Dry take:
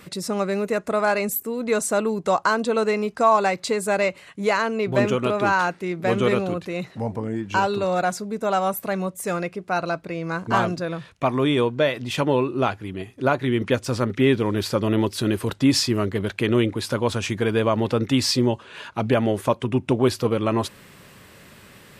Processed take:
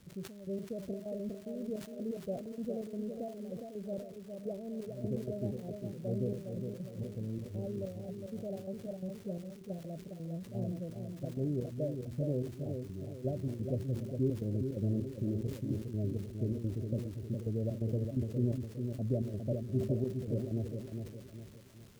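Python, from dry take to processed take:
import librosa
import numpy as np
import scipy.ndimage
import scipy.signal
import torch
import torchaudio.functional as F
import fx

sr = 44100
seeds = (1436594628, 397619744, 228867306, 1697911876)

y = scipy.signal.sosfilt(scipy.signal.butter(12, 620.0, 'lowpass', fs=sr, output='sos'), x)
y = fx.peak_eq(y, sr, hz=420.0, db=-14.5, octaves=1.9)
y = fx.comb_fb(y, sr, f0_hz=390.0, decay_s=0.35, harmonics='odd', damping=0.0, mix_pct=70)
y = fx.step_gate(y, sr, bpm=128, pattern='xx..x.xx.xx.x', floor_db=-12.0, edge_ms=4.5)
y = fx.dmg_crackle(y, sr, seeds[0], per_s=590.0, level_db=-58.0)
y = fx.echo_feedback(y, sr, ms=409, feedback_pct=41, wet_db=-6)
y = fx.sustainer(y, sr, db_per_s=100.0)
y = F.gain(torch.from_numpy(y), 6.0).numpy()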